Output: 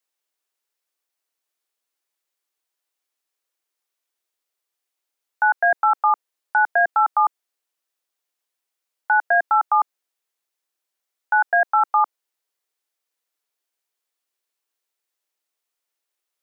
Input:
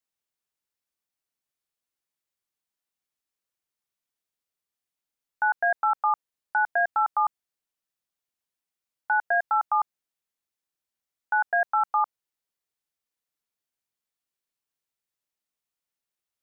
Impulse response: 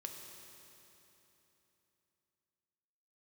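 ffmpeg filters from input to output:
-af "highpass=f=320:w=0.5412,highpass=f=320:w=1.3066,volume=2"

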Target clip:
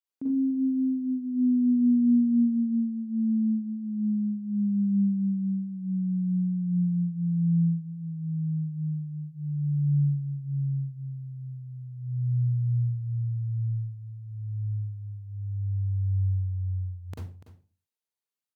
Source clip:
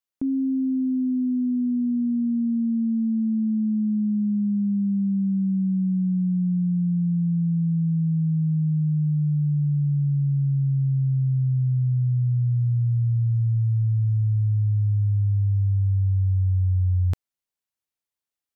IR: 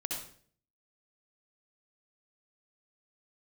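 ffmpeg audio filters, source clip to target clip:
-filter_complex "[0:a]highpass=120,aecho=1:1:290:0.211[s0];[1:a]atrim=start_sample=2205,asetrate=66150,aresample=44100[s1];[s0][s1]afir=irnorm=-1:irlink=0,volume=0.75"

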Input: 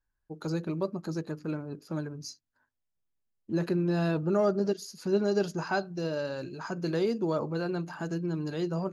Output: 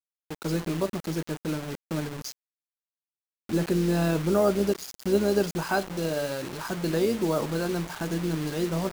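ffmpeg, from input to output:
-af "tremolo=f=130:d=0.4,acrusher=bits=6:mix=0:aa=0.000001,volume=1.78"

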